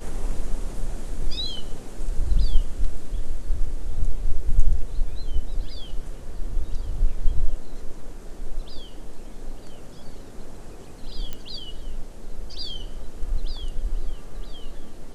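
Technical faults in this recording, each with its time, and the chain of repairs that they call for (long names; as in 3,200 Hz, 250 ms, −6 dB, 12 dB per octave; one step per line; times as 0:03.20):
0:11.33: click −16 dBFS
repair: click removal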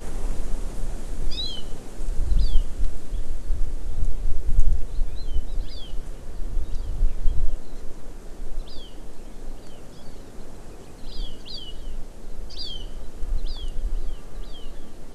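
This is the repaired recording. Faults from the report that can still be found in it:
none of them is left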